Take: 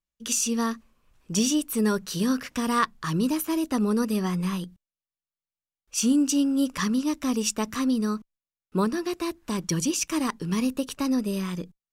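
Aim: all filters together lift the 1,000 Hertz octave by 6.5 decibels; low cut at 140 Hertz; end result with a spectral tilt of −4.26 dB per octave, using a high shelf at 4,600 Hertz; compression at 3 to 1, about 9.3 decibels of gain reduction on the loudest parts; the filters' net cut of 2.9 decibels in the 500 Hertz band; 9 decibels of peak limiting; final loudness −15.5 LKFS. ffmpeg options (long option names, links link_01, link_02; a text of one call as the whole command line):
ffmpeg -i in.wav -af "highpass=140,equalizer=frequency=500:width_type=o:gain=-5.5,equalizer=frequency=1000:width_type=o:gain=8.5,highshelf=frequency=4600:gain=4,acompressor=threshold=-26dB:ratio=3,volume=16dB,alimiter=limit=-6dB:level=0:latency=1" out.wav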